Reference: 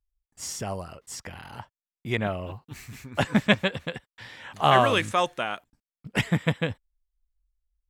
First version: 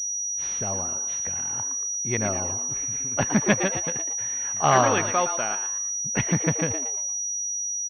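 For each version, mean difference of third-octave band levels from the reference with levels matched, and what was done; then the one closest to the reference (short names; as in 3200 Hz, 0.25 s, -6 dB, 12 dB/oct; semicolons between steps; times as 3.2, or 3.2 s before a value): 7.0 dB: on a send: frequency-shifting echo 0.115 s, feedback 38%, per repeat +150 Hz, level -9 dB; on the sum: pulse-width modulation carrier 5800 Hz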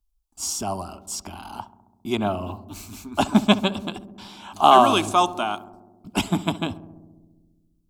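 4.5 dB: fixed phaser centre 500 Hz, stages 6; on a send: darkening echo 67 ms, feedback 81%, low-pass 1100 Hz, level -15.5 dB; on the sum: gain +8 dB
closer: second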